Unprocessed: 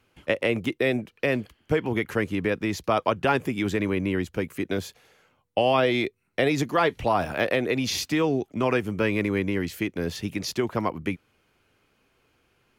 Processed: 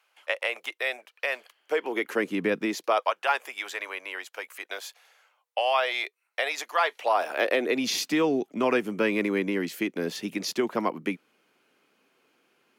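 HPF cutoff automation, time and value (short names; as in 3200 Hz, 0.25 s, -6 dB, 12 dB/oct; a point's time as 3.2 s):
HPF 24 dB/oct
1.41 s 660 Hz
2.55 s 160 Hz
3.1 s 660 Hz
6.82 s 660 Hz
7.89 s 200 Hz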